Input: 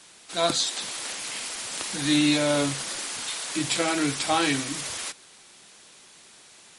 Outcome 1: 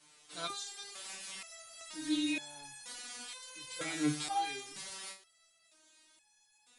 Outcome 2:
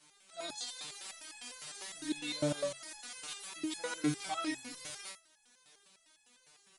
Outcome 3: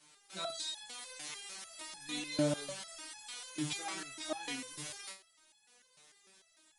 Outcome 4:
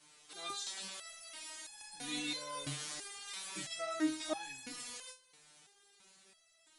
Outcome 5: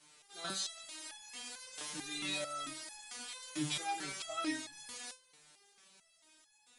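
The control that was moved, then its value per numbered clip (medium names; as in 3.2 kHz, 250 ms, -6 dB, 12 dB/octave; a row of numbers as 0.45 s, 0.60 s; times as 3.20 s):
resonator arpeggio, rate: 2.1 Hz, 9.9 Hz, 6.7 Hz, 3 Hz, 4.5 Hz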